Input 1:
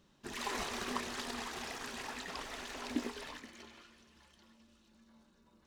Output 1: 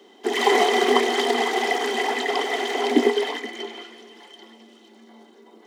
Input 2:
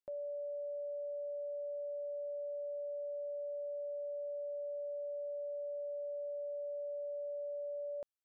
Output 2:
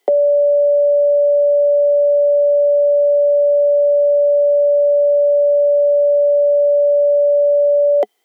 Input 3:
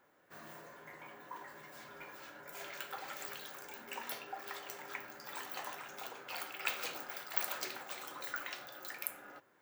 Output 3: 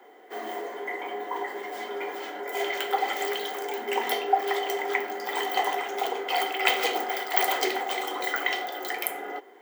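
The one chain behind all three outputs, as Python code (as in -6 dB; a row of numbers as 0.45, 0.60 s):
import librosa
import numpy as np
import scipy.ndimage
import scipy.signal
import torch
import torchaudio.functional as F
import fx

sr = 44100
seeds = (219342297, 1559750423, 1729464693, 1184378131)

y = scipy.signal.sosfilt(scipy.signal.butter(16, 210.0, 'highpass', fs=sr, output='sos'), x)
y = fx.small_body(y, sr, hz=(420.0, 730.0, 2000.0, 3100.0), ring_ms=35, db=18)
y = librosa.util.normalize(y) * 10.0 ** (-3 / 20.0)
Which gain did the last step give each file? +11.0, +24.5, +8.5 dB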